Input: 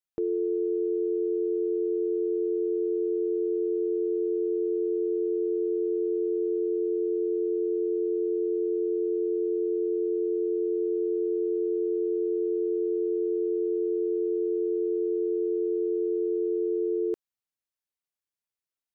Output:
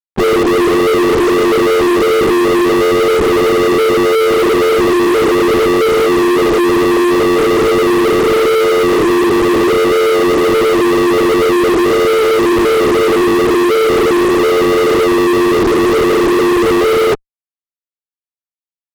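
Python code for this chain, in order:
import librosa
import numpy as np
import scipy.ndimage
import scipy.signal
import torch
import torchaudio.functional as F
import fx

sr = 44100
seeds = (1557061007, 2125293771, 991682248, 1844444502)

y = fx.lpc_vocoder(x, sr, seeds[0], excitation='whisper', order=10)
y = fx.fuzz(y, sr, gain_db=43.0, gate_db=-50.0)
y = y * 10.0 ** (3.5 / 20.0)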